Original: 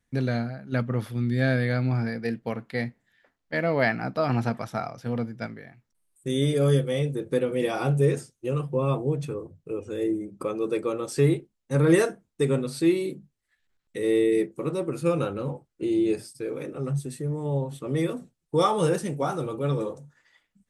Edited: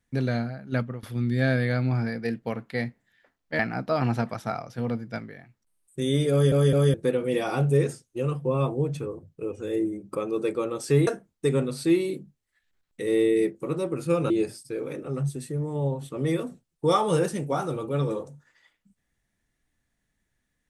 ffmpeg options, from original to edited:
-filter_complex "[0:a]asplit=8[s0][s1][s2][s3][s4][s5][s6][s7];[s0]atrim=end=1.03,asetpts=PTS-STARTPTS,afade=t=out:st=0.77:d=0.26:silence=0.0707946[s8];[s1]atrim=start=1.03:end=3.592,asetpts=PTS-STARTPTS,afade=t=in:d=0.004:c=hsin:silence=0.0707946[s9];[s2]atrim=start=3.868:end=6.802[s10];[s3]atrim=start=6.588:end=6.802[s11];[s4]atrim=start=6.588:end=6.802[s12];[s5]atrim=start=7.218:end=11.352[s13];[s6]atrim=start=12.028:end=15.262[s14];[s7]atrim=start=15.998[s15];[s8][s9]concat=n=2:v=0:a=1[s16];[s16][s10]acrossfade=d=0.004:c1=hsin:c2=hsin[s17];[s17][s11]acrossfade=d=0.004:c1=hsin:c2=hsin[s18];[s18][s12]acrossfade=d=0.004:c1=hsin:c2=hsin[s19];[s19][s13]acrossfade=d=0.004:c1=hsin:c2=hsin[s20];[s20][s14]acrossfade=d=0.004:c1=hsin:c2=hsin[s21];[s21][s15]acrossfade=d=0.004:c1=hsin:c2=hsin"

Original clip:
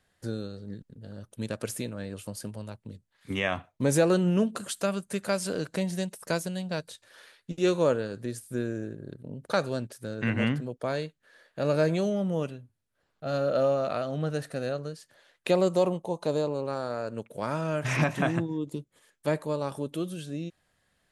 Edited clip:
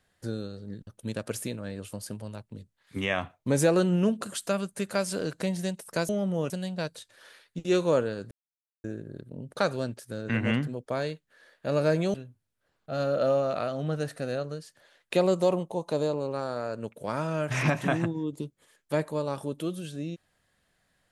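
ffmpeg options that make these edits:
-filter_complex "[0:a]asplit=7[s0][s1][s2][s3][s4][s5][s6];[s0]atrim=end=0.872[s7];[s1]atrim=start=1.208:end=6.432[s8];[s2]atrim=start=12.068:end=12.482[s9];[s3]atrim=start=6.428:end=8.24,asetpts=PTS-STARTPTS,afade=t=out:st=1.808:d=0.004:c=hsin[s10];[s4]atrim=start=8.24:end=8.77,asetpts=PTS-STARTPTS,volume=0[s11];[s5]atrim=start=8.77:end=12.072,asetpts=PTS-STARTPTS,afade=t=in:d=0.004:c=hsin[s12];[s6]atrim=start=12.478[s13];[s7][s8]acrossfade=d=0.004:c1=hsin:c2=hsin[s14];[s14][s9]acrossfade=d=0.004:c1=hsin:c2=hsin[s15];[s10][s11][s12]concat=n=3:v=0:a=1[s16];[s15][s16]acrossfade=d=0.004:c1=hsin:c2=hsin[s17];[s17][s13]acrossfade=d=0.004:c1=hsin:c2=hsin"

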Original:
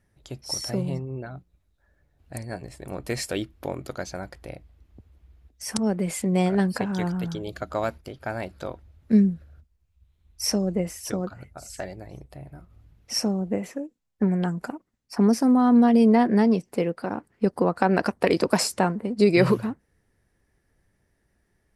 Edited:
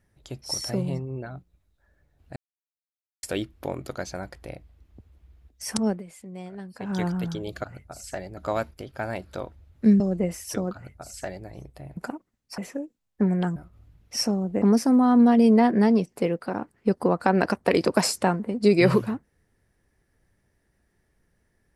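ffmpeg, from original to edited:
-filter_complex "[0:a]asplit=12[s0][s1][s2][s3][s4][s5][s6][s7][s8][s9][s10][s11];[s0]atrim=end=2.36,asetpts=PTS-STARTPTS,afade=t=out:st=2.356:d=0.004:c=hsin[s12];[s1]atrim=start=2.36:end=3.23,asetpts=PTS-STARTPTS,volume=0[s13];[s2]atrim=start=3.23:end=6.03,asetpts=PTS-STARTPTS,afade=t=in:d=0.004:c=hsin,afade=t=out:st=2.65:d=0.15:silence=0.141254[s14];[s3]atrim=start=6.03:end=6.78,asetpts=PTS-STARTPTS,volume=0.141[s15];[s4]atrim=start=6.78:end=7.642,asetpts=PTS-STARTPTS,afade=t=in:d=0.15:silence=0.141254[s16];[s5]atrim=start=11.298:end=12.032[s17];[s6]atrim=start=7.638:end=9.272[s18];[s7]atrim=start=10.558:end=12.532[s19];[s8]atrim=start=14.568:end=15.182[s20];[s9]atrim=start=13.588:end=14.572[s21];[s10]atrim=start=12.528:end=13.592[s22];[s11]atrim=start=15.178[s23];[s12][s13][s14][s15][s16]concat=n=5:v=0:a=1[s24];[s24][s17]acrossfade=d=0.004:c1=hsin:c2=hsin[s25];[s25][s18]acrossfade=d=0.004:c1=hsin:c2=hsin[s26];[s26][s19]acrossfade=d=0.004:c1=hsin:c2=hsin[s27];[s27][s20]acrossfade=d=0.004:c1=hsin:c2=hsin[s28];[s28][s21]acrossfade=d=0.004:c1=hsin:c2=hsin[s29];[s29][s22]acrossfade=d=0.004:c1=hsin:c2=hsin[s30];[s30][s23]acrossfade=d=0.004:c1=hsin:c2=hsin"

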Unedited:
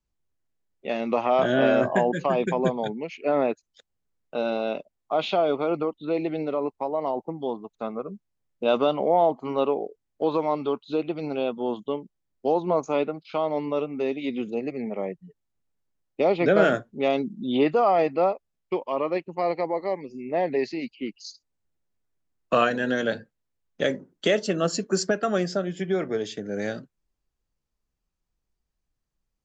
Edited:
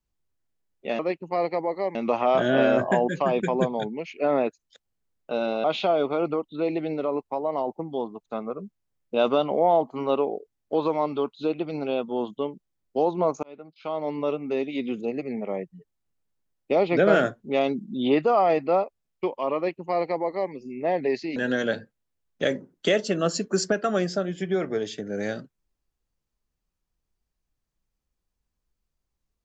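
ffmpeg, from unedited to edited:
-filter_complex "[0:a]asplit=6[s0][s1][s2][s3][s4][s5];[s0]atrim=end=0.992[s6];[s1]atrim=start=19.048:end=20.012[s7];[s2]atrim=start=0.988:end=4.682[s8];[s3]atrim=start=5.128:end=12.92,asetpts=PTS-STARTPTS,afade=t=out:st=7.788:d=0.004:c=hsin[s9];[s4]atrim=start=12.92:end=20.852,asetpts=PTS-STARTPTS,afade=t=in:d=0.81[s10];[s5]atrim=start=22.748[s11];[s6][s7]acrossfade=d=0.004:c1=hsin:c2=hsin[s12];[s12][s8]acrossfade=d=0.004:c1=hsin:c2=hsin[s13];[s9][s10]concat=n=2:v=0:a=1[s14];[s13][s14]acrossfade=d=0.004:c1=hsin:c2=hsin[s15];[s15][s11]acrossfade=d=0.004:c1=hsin:c2=hsin"

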